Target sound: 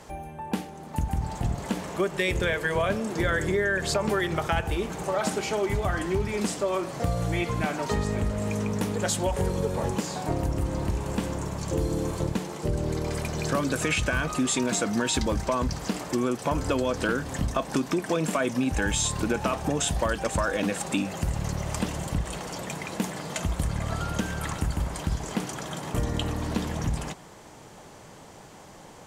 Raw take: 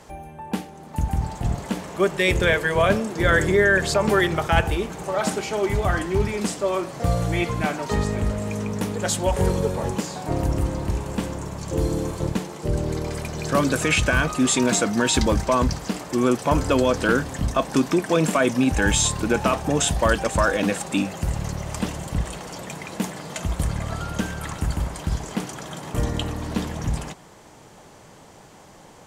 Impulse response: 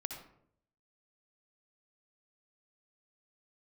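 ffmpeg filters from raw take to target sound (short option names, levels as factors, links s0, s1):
-af "acompressor=threshold=0.0708:ratio=4"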